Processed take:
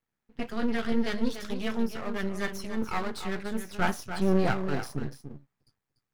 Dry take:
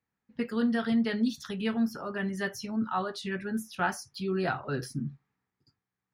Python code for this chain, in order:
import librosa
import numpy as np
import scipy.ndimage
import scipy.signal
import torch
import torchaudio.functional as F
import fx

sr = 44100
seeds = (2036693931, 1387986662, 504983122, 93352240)

p1 = fx.low_shelf(x, sr, hz=340.0, db=11.0, at=(3.77, 4.54))
p2 = np.maximum(p1, 0.0)
p3 = p2 + fx.echo_single(p2, sr, ms=292, db=-9.5, dry=0)
y = F.gain(torch.from_numpy(p3), 3.5).numpy()